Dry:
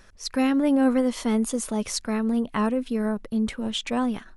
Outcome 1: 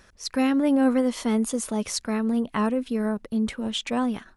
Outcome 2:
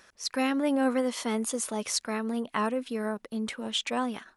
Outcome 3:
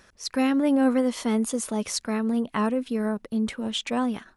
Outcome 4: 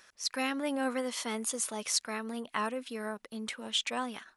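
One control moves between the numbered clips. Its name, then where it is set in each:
HPF, cutoff: 46, 520, 120, 1400 Hz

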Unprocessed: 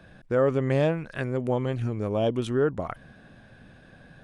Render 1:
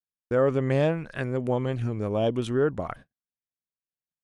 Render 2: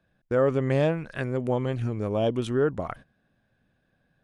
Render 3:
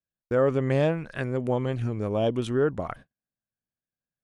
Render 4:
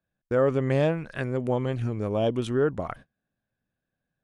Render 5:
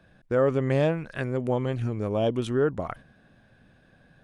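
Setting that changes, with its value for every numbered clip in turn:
gate, range: -59, -19, -47, -33, -7 dB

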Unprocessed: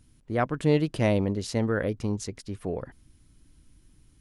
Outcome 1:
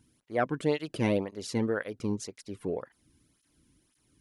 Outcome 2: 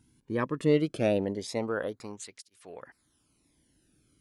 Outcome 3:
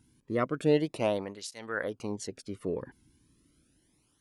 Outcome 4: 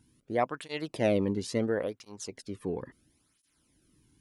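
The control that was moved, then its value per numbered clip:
tape flanging out of phase, nulls at: 1.9, 0.2, 0.33, 0.73 Hz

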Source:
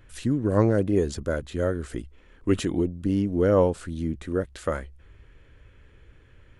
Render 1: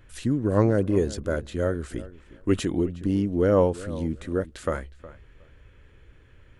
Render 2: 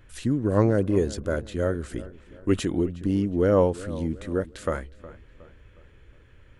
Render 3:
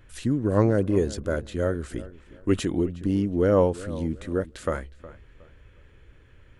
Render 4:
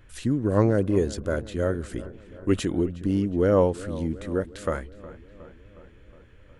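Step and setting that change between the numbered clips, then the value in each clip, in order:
darkening echo, feedback: 17, 43, 29, 64%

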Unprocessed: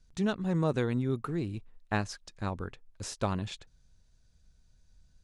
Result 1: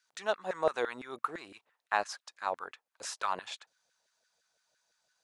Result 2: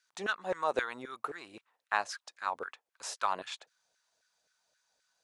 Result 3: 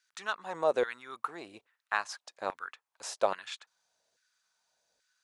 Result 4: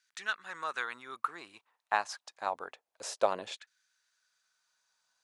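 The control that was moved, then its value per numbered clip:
LFO high-pass, rate: 5.9, 3.8, 1.2, 0.28 Hz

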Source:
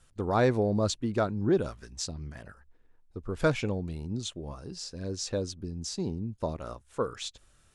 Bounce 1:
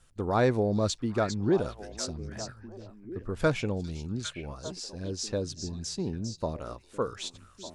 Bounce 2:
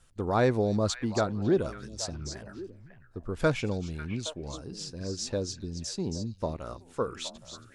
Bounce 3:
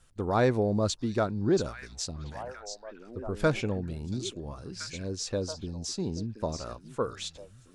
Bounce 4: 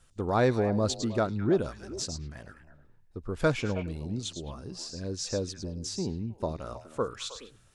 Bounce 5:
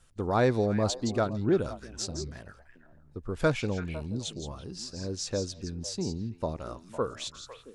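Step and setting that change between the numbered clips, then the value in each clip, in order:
delay with a stepping band-pass, time: 0.401, 0.273, 0.681, 0.105, 0.168 s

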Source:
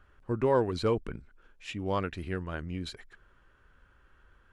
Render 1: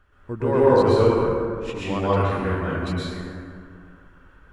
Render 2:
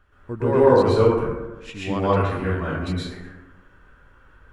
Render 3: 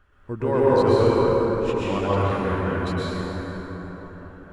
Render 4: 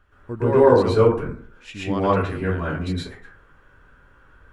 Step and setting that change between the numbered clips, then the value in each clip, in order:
plate-style reverb, RT60: 2.4, 1.2, 5.2, 0.52 s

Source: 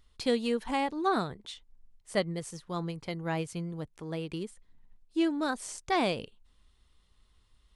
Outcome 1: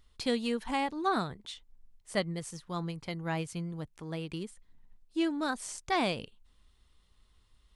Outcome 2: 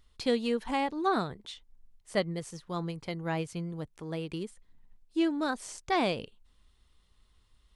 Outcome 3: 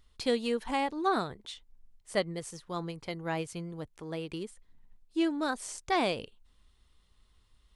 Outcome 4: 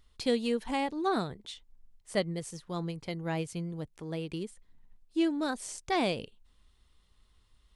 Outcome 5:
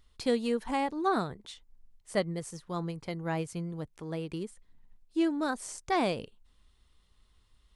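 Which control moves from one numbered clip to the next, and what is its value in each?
dynamic EQ, frequency: 450, 9500, 170, 1200, 3200 Hz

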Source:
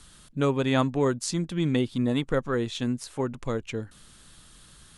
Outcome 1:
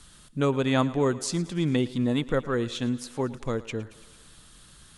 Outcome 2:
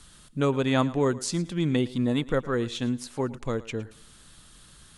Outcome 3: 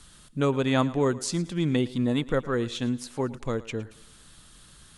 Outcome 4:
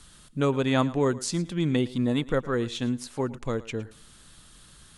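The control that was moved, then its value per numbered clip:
thinning echo, feedback: 67, 30, 46, 19%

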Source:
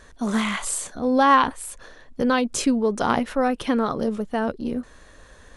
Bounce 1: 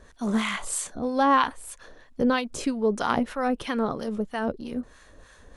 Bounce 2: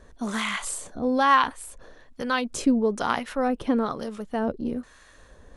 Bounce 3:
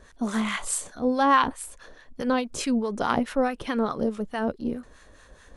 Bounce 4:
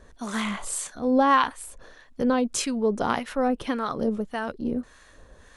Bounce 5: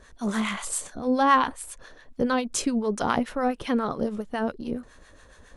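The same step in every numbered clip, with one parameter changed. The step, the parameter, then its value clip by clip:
harmonic tremolo, rate: 3.1, 1.1, 4.7, 1.7, 7.2 Hz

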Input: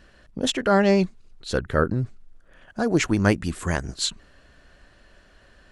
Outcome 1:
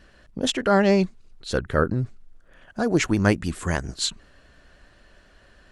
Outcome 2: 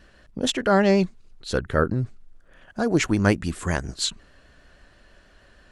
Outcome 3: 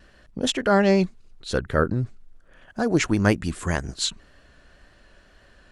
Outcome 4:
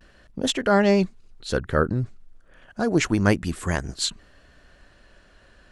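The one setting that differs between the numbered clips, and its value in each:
vibrato, rate: 9.9, 6.3, 1.9, 0.32 Hz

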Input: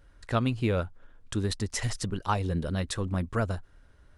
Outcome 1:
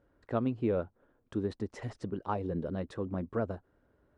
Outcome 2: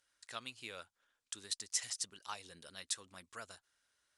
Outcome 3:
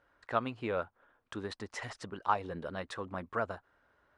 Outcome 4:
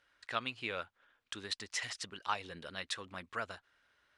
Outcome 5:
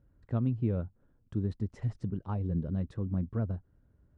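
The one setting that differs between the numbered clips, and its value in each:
band-pass, frequency: 390, 7600, 1000, 2700, 150 Hz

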